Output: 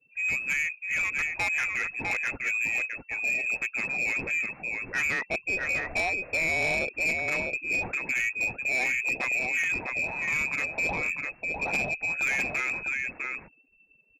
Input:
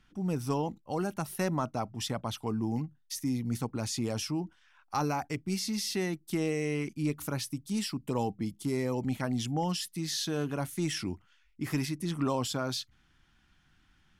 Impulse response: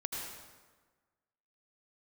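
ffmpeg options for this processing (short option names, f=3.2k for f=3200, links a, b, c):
-filter_complex "[0:a]aexciter=amount=4.7:drive=8.5:freq=2.1k,asplit=2[a][b];[b]aecho=0:1:652:0.531[c];[a][c]amix=inputs=2:normalize=0,afftfilt=real='re*gte(hypot(re,im),0.00447)':imag='im*gte(hypot(re,im),0.00447)':win_size=1024:overlap=0.75,asplit=2[d][e];[e]acrusher=bits=4:mode=log:mix=0:aa=0.000001,volume=-4dB[f];[d][f]amix=inputs=2:normalize=0,adynamicequalizer=threshold=0.00708:dfrequency=440:dqfactor=2.5:tfrequency=440:tqfactor=2.5:attack=5:release=100:ratio=0.375:range=2:mode=boostabove:tftype=bell,lowpass=f=2.3k:t=q:w=0.5098,lowpass=f=2.3k:t=q:w=0.6013,lowpass=f=2.3k:t=q:w=0.9,lowpass=f=2.3k:t=q:w=2.563,afreqshift=-2700,asoftclip=type=tanh:threshold=-22dB"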